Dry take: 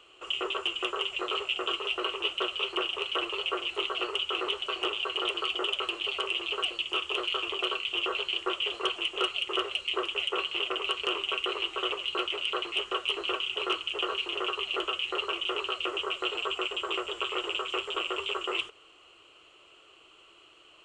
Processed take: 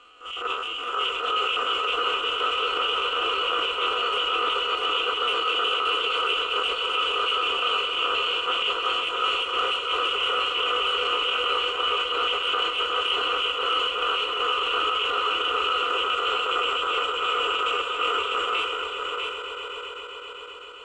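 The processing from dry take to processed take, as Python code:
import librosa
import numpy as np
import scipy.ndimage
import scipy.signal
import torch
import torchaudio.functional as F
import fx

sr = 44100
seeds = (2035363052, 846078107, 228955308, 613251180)

p1 = fx.spec_steps(x, sr, hold_ms=50)
p2 = fx.peak_eq(p1, sr, hz=1300.0, db=13.5, octaves=0.25)
p3 = p2 + 0.9 * np.pad(p2, (int(4.1 * sr / 1000.0), 0))[:len(p2)]
p4 = p3 + fx.echo_swell(p3, sr, ms=130, loudest=5, wet_db=-14.0, dry=0)
p5 = fx.transient(p4, sr, attack_db=-10, sustain_db=5)
p6 = fx.level_steps(p5, sr, step_db=10)
p7 = p5 + F.gain(torch.from_numpy(p6), 1.0).numpy()
p8 = fx.high_shelf(p7, sr, hz=9000.0, db=-8.0)
p9 = p8 + 10.0 ** (-5.0 / 20.0) * np.pad(p8, (int(648 * sr / 1000.0), 0))[:len(p8)]
y = F.gain(torch.from_numpy(p9), -2.5).numpy()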